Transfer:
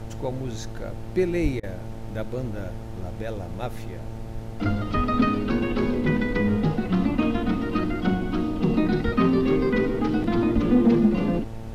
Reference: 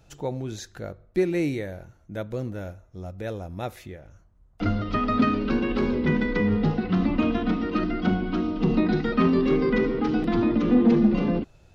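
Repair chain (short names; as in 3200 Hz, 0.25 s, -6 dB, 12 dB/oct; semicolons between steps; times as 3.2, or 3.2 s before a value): de-hum 112 Hz, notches 8; de-plosive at 1.42/4.96/9.04/10.54; interpolate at 1.6, 31 ms; noise print and reduce 19 dB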